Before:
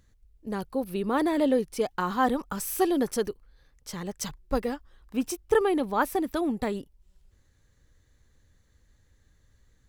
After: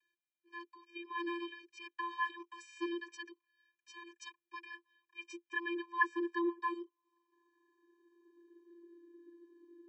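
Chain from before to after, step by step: vocoder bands 32, square 343 Hz; tilt -4 dB/oct; high-pass sweep 2300 Hz -> 290 Hz, 5.66–9.12; gain +8 dB

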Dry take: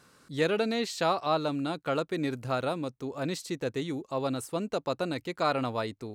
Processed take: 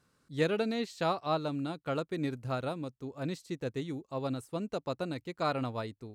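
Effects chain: low shelf 190 Hz +9 dB; upward expander 1.5:1, over -42 dBFS; gain -3 dB

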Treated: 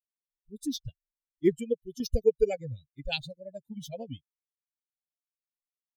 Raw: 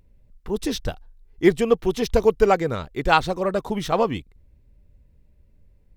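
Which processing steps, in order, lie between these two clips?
per-bin expansion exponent 3; Chebyshev band-stop 430–3000 Hz, order 2; random-step tremolo 3.5 Hz

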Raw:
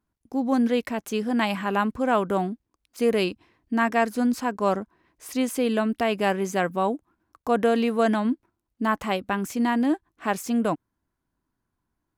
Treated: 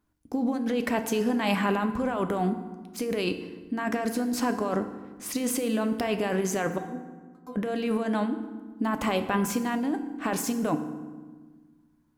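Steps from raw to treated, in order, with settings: negative-ratio compressor -27 dBFS, ratio -1; 6.78–7.56 metallic resonator 250 Hz, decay 0.32 s, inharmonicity 0.002; FDN reverb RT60 1.4 s, low-frequency decay 1.55×, high-frequency decay 0.65×, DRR 7.5 dB

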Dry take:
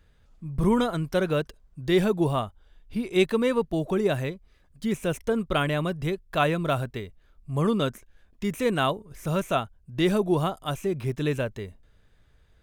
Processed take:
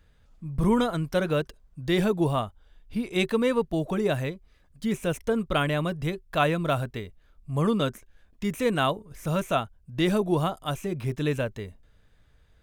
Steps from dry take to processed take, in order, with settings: notch 380 Hz, Q 12

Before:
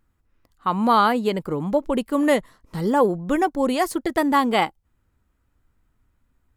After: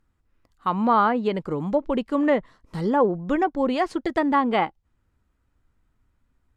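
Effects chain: median filter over 3 samples; treble ducked by the level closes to 2000 Hz, closed at -14.5 dBFS; gain -1.5 dB

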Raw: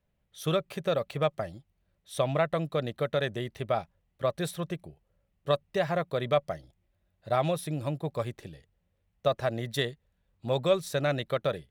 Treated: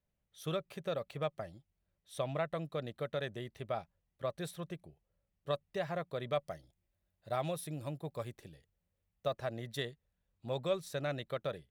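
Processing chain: 6.33–9.32 high shelf 5400 Hz -> 11000 Hz +7.5 dB; gain -9 dB

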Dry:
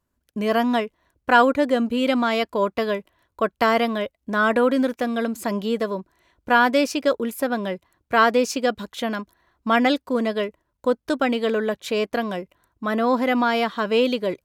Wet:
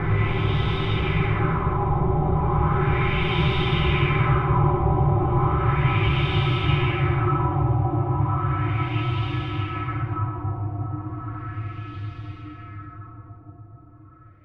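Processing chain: HPF 270 Hz 24 dB/oct; formant shift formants -4 st; sample leveller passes 3; level quantiser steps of 22 dB; frequency shift -290 Hz; Paulstretch 30×, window 0.50 s, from 2.71; LFO low-pass sine 0.35 Hz 770–3500 Hz; on a send: reverb RT60 1.8 s, pre-delay 20 ms, DRR 6 dB

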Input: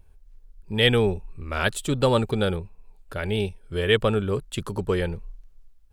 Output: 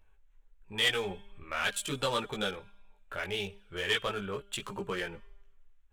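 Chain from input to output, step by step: Wiener smoothing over 9 samples; tilt shelf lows -9.5 dB, about 700 Hz; in parallel at +2 dB: compressor, threshold -29 dBFS, peak gain reduction 19.5 dB; on the sum: resonator 200 Hz, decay 0.97 s, mix 40%; chorus voices 6, 0.38 Hz, delay 18 ms, depth 3.7 ms; soft clip -16.5 dBFS, distortion -12 dB; gain -4 dB

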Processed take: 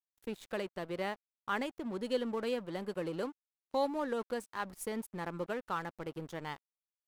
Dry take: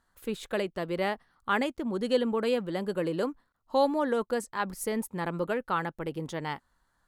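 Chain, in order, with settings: in parallel at -2.5 dB: compressor 6:1, threshold -37 dBFS, peak gain reduction 16.5 dB; on the sum: crossover distortion -42 dBFS; gain -8 dB

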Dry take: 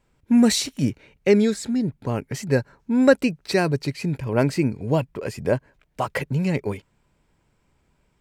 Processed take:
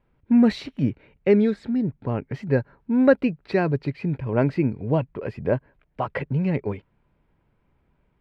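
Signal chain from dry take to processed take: air absorption 390 m

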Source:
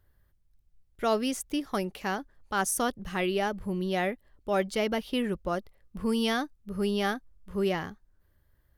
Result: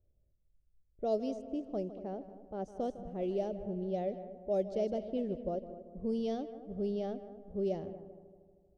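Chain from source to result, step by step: EQ curve 310 Hz 0 dB, 630 Hz +5 dB, 1000 Hz -18 dB, 1600 Hz -23 dB, 6200 Hz -2 dB, 13000 Hz -13 dB; multi-head echo 78 ms, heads second and third, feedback 51%, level -14 dB; low-pass opened by the level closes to 760 Hz, open at -18 dBFS; gain -7 dB

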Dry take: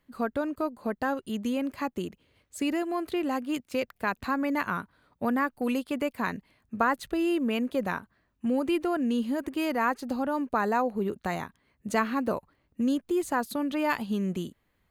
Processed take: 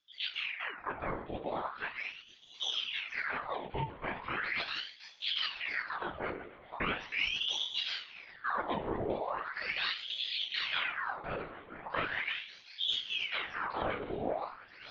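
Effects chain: octaver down 2 oct, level -1 dB; thinning echo 0.967 s, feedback 66%, high-pass 610 Hz, level -13 dB; plate-style reverb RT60 0.63 s, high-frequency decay 0.9×, DRR 2.5 dB; LPC vocoder at 8 kHz whisper; ring modulator with a swept carrier 1900 Hz, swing 80%, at 0.39 Hz; gain -8 dB

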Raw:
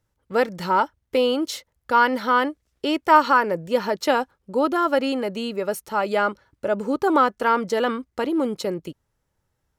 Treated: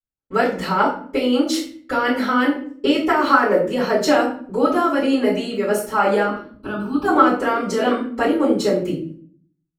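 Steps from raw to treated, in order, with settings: 3.21–3.61 median filter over 5 samples; graphic EQ 250/500/2000/8000 Hz +12/+3/+3/+3 dB; limiter -8 dBFS, peak gain reduction 6.5 dB; harmonic-percussive split percussive +8 dB; gate -44 dBFS, range -31 dB; 6.25–7.05 fixed phaser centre 2000 Hz, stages 6; shoebox room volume 52 m³, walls mixed, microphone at 3.4 m; gain -17.5 dB

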